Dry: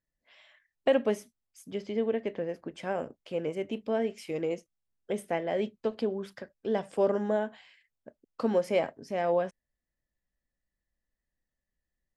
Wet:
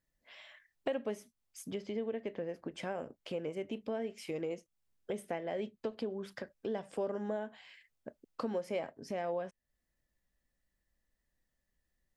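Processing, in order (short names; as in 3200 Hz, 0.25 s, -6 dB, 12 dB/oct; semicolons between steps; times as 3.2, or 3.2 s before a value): compressor 2.5:1, threshold -44 dBFS, peak gain reduction 16.5 dB; gain +4 dB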